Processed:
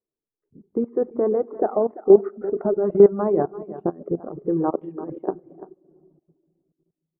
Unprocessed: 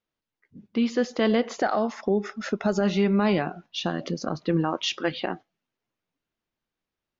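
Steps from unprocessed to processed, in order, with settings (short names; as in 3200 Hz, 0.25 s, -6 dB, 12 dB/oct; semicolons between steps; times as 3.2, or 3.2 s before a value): 4.83–5.3 negative-ratio compressor -28 dBFS, ratio -0.5; bell 390 Hz +14 dB 0.44 oct; shoebox room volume 3200 m³, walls mixed, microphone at 0.48 m; low-pass opened by the level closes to 440 Hz, open at 4 dBFS; notches 60/120/180/240/300/360/420 Hz; level quantiser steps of 12 dB; tilt shelf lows -7 dB, about 690 Hz; on a send: echo 0.341 s -14.5 dB; on the sum: reverb removal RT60 0.51 s; LPF 1300 Hz 24 dB/oct; gain +8 dB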